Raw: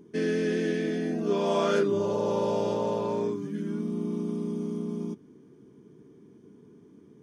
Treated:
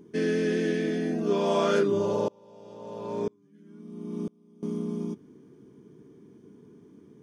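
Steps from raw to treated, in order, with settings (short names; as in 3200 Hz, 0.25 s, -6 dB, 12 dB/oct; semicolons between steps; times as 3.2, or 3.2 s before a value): 2.28–4.63 dB-ramp tremolo swelling 1 Hz, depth 33 dB; gain +1 dB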